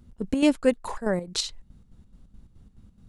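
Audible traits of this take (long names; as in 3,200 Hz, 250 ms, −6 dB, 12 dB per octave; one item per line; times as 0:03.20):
chopped level 4.7 Hz, depth 60%, duty 60%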